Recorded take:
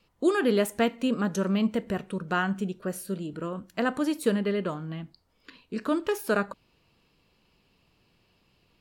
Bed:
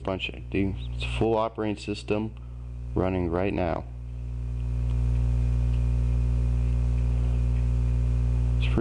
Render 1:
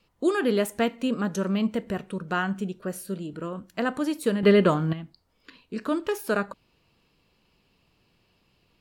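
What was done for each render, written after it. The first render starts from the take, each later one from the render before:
0:04.43–0:04.93: clip gain +10.5 dB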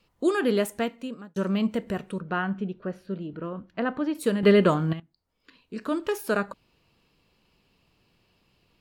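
0:00.58–0:01.36: fade out
0:02.20–0:04.15: high-frequency loss of the air 260 metres
0:05.00–0:06.09: fade in, from −19 dB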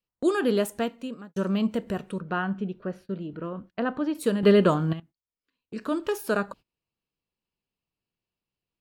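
noise gate −45 dBFS, range −24 dB
dynamic equaliser 2,100 Hz, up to −6 dB, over −51 dBFS, Q 3.8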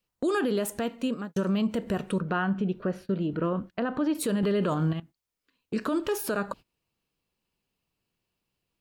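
in parallel at +2.5 dB: downward compressor, threshold −31 dBFS, peak gain reduction 16.5 dB
on the sum: brickwall limiter −19 dBFS, peak gain reduction 11.5 dB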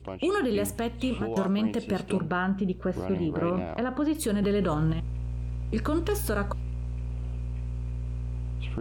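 mix in bed −8.5 dB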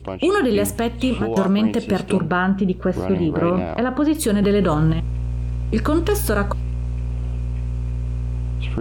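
level +8.5 dB

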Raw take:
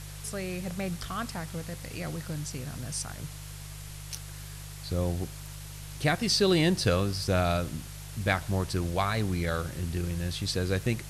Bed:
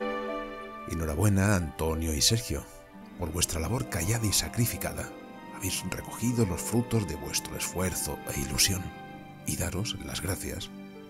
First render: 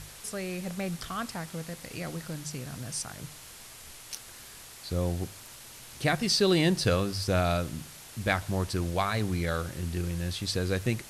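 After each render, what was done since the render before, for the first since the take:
hum removal 50 Hz, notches 3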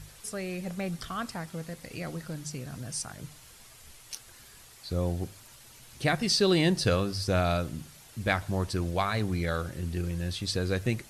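broadband denoise 7 dB, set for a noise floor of −48 dBFS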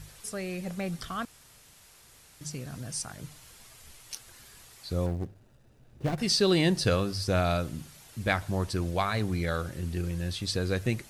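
0:01.25–0:02.41: fill with room tone
0:05.06–0:06.18: running median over 41 samples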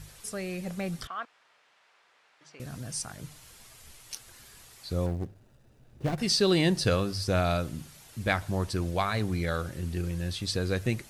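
0:01.07–0:02.60: band-pass filter 650–2,400 Hz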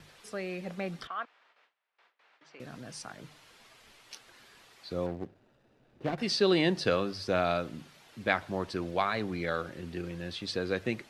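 noise gate with hold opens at −54 dBFS
three-way crossover with the lows and the highs turned down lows −16 dB, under 190 Hz, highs −16 dB, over 4,600 Hz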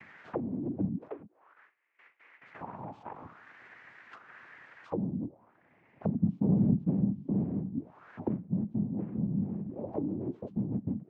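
cochlear-implant simulation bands 4
envelope-controlled low-pass 200–2,200 Hz down, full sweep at −32.5 dBFS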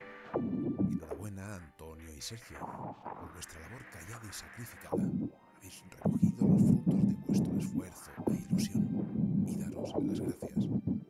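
mix in bed −19.5 dB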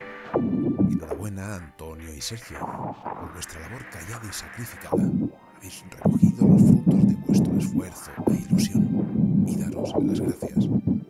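level +10.5 dB

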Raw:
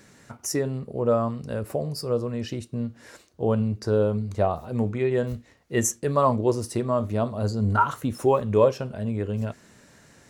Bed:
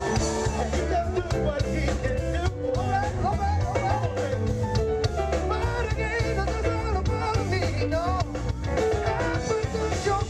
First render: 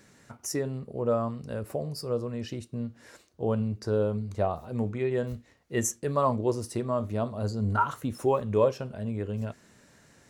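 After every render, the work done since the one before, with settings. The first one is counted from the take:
level −4.5 dB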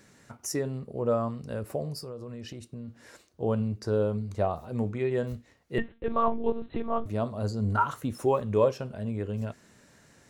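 0:01.98–0:02.88: downward compressor 8 to 1, threshold −36 dBFS
0:05.78–0:07.06: one-pitch LPC vocoder at 8 kHz 230 Hz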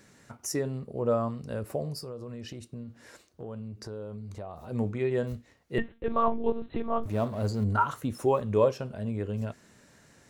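0:02.83–0:04.65: downward compressor 4 to 1, threshold −38 dBFS
0:07.03–0:07.64: mu-law and A-law mismatch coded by mu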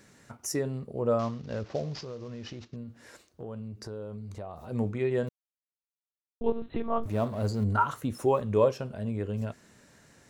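0:01.19–0:02.76: variable-slope delta modulation 32 kbit/s
0:05.29–0:06.41: silence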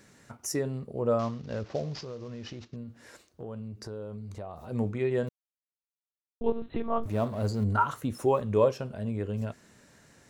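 no processing that can be heard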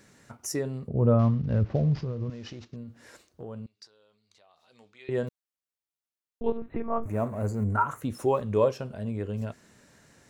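0:00.88–0:02.30: bass and treble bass +15 dB, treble −13 dB
0:03.66–0:05.09: resonant band-pass 4,000 Hz, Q 1.8
0:06.57–0:08.01: flat-topped bell 4,000 Hz −14.5 dB 1.1 octaves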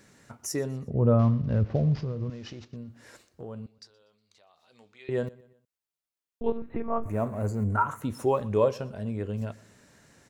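repeating echo 121 ms, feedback 44%, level −23 dB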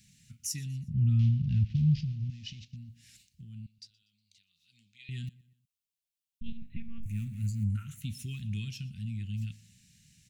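dynamic equaliser 3,200 Hz, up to +4 dB, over −53 dBFS, Q 1.2
elliptic band-stop filter 180–2,600 Hz, stop band 70 dB

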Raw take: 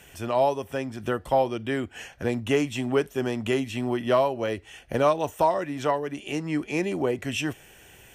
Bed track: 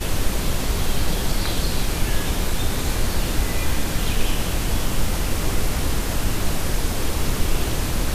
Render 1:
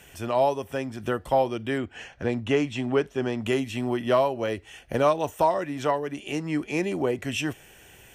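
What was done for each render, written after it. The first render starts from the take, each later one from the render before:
0:01.78–0:03.42: Bessel low-pass filter 5,000 Hz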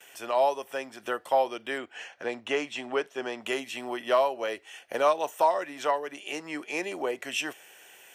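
high-pass filter 530 Hz 12 dB per octave
noise gate with hold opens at −45 dBFS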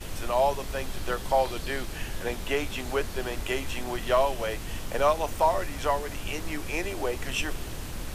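mix in bed track −13.5 dB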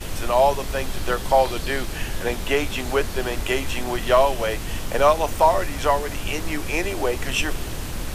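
level +6.5 dB

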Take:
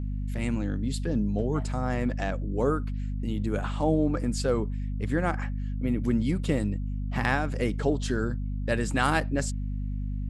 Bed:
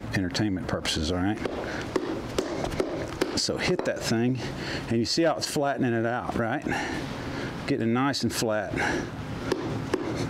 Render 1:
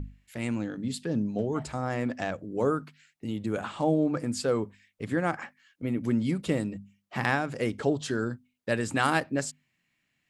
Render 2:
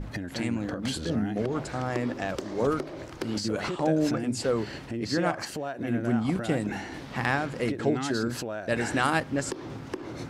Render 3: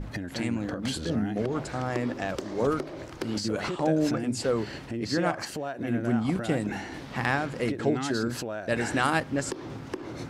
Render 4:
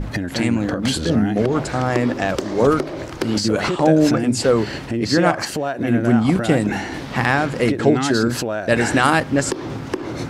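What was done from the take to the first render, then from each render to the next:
mains-hum notches 50/100/150/200/250 Hz
mix in bed −8 dB
no processing that can be heard
level +10.5 dB; brickwall limiter −2 dBFS, peak gain reduction 3 dB

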